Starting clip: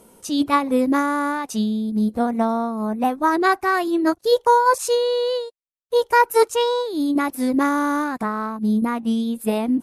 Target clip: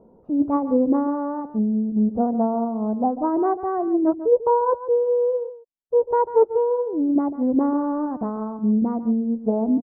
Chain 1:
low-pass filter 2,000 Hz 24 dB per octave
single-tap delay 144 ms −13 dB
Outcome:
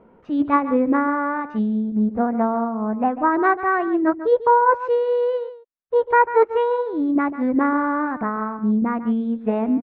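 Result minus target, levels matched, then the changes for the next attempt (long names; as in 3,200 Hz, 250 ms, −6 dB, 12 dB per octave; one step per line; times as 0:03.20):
2,000 Hz band +19.0 dB
change: low-pass filter 830 Hz 24 dB per octave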